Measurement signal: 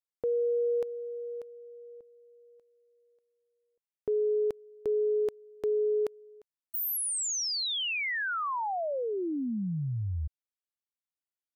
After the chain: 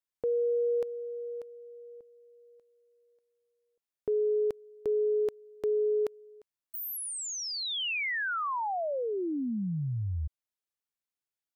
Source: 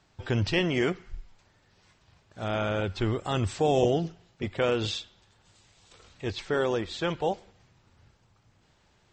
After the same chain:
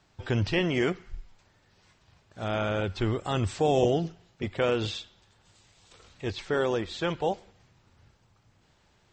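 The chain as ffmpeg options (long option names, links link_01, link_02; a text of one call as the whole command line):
ffmpeg -i in.wav -filter_complex "[0:a]acrossover=split=3000[link_01][link_02];[link_02]acompressor=threshold=-36dB:ratio=4:attack=1:release=60[link_03];[link_01][link_03]amix=inputs=2:normalize=0" out.wav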